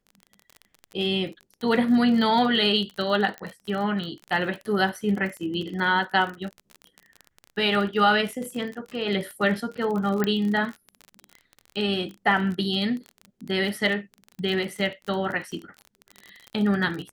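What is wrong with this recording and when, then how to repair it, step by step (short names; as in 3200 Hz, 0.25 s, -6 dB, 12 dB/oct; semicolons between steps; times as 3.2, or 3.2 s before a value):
crackle 33/s -30 dBFS
3.38 pop -20 dBFS
10.24 pop -11 dBFS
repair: de-click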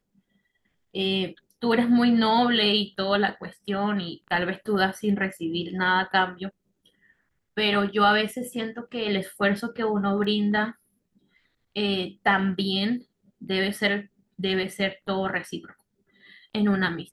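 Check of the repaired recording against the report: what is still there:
10.24 pop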